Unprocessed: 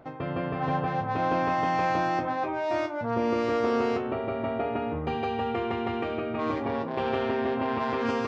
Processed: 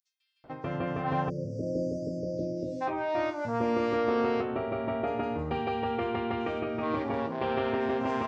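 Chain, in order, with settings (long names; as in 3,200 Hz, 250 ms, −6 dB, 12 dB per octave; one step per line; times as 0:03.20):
time-frequency box erased 0:00.85–0:02.38, 660–4,500 Hz
multiband delay without the direct sound highs, lows 440 ms, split 5,700 Hz
level −1.5 dB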